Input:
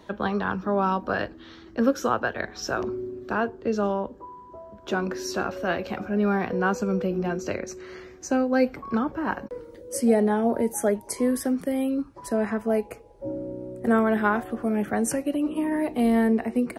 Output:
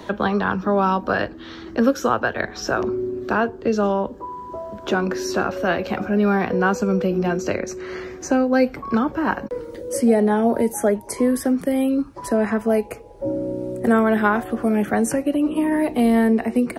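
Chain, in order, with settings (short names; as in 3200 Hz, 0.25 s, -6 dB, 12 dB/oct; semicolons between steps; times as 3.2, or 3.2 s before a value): three-band squash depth 40%; gain +5 dB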